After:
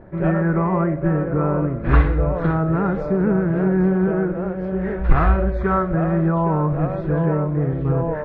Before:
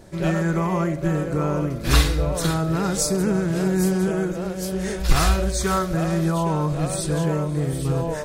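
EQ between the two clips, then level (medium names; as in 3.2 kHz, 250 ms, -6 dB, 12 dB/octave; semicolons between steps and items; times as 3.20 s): low-pass 1.8 kHz 24 dB/octave; +3.0 dB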